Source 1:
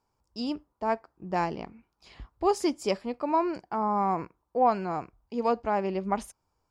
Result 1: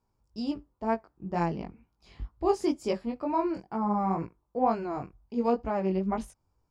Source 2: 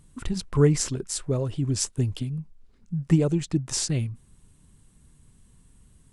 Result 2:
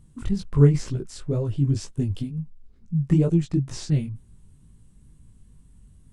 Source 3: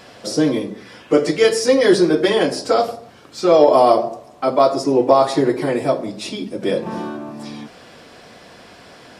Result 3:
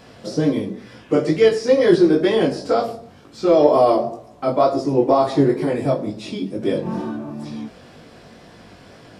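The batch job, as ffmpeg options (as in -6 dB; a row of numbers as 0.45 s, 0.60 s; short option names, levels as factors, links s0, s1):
-filter_complex "[0:a]acrossover=split=5200[s0][s1];[s1]acompressor=threshold=0.01:ratio=4:attack=1:release=60[s2];[s0][s2]amix=inputs=2:normalize=0,lowshelf=f=320:g=10.5,flanger=delay=17.5:depth=4.3:speed=2.1,volume=0.794"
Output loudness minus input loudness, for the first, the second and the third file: -1.0 LU, +2.0 LU, -1.5 LU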